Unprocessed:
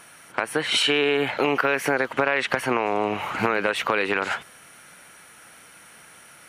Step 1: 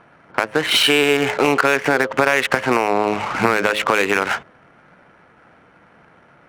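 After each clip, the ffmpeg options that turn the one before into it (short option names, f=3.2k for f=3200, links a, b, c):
-af "adynamicsmooth=sensitivity=4.5:basefreq=940,bandreject=f=106.3:t=h:w=4,bandreject=f=212.6:t=h:w=4,bandreject=f=318.9:t=h:w=4,bandreject=f=425.2:t=h:w=4,bandreject=f=531.5:t=h:w=4,bandreject=f=637.8:t=h:w=4,volume=6dB"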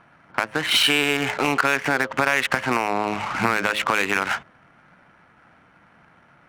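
-af "equalizer=f=450:t=o:w=0.91:g=-7.5,volume=-2.5dB"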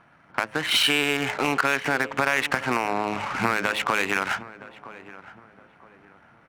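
-filter_complex "[0:a]asplit=2[a][b];[b]adelay=967,lowpass=f=1.4k:p=1,volume=-16dB,asplit=2[c][d];[d]adelay=967,lowpass=f=1.4k:p=1,volume=0.36,asplit=2[e][f];[f]adelay=967,lowpass=f=1.4k:p=1,volume=0.36[g];[a][c][e][g]amix=inputs=4:normalize=0,volume=-2.5dB"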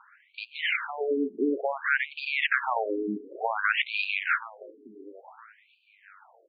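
-filter_complex "[0:a]acrossover=split=1200[a][b];[b]asoftclip=type=tanh:threshold=-17dB[c];[a][c]amix=inputs=2:normalize=0,afftfilt=real='re*between(b*sr/1024,300*pow(3400/300,0.5+0.5*sin(2*PI*0.56*pts/sr))/1.41,300*pow(3400/300,0.5+0.5*sin(2*PI*0.56*pts/sr))*1.41)':imag='im*between(b*sr/1024,300*pow(3400/300,0.5+0.5*sin(2*PI*0.56*pts/sr))/1.41,300*pow(3400/300,0.5+0.5*sin(2*PI*0.56*pts/sr))*1.41)':win_size=1024:overlap=0.75,volume=3.5dB"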